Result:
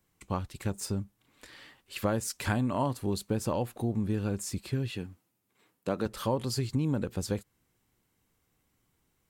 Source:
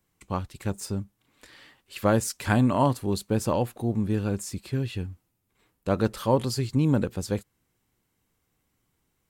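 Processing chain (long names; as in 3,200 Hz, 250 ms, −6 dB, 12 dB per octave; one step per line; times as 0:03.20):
downward compressor 3 to 1, threshold −27 dBFS, peak gain reduction 9 dB
0:04.90–0:06.06: high-pass filter 160 Hz 12 dB per octave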